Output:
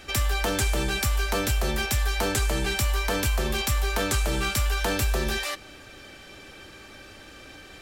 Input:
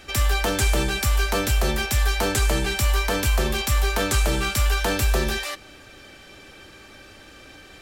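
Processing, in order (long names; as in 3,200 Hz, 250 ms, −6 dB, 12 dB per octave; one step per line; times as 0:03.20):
downward compressor 3 to 1, threshold −22 dBFS, peak gain reduction 5 dB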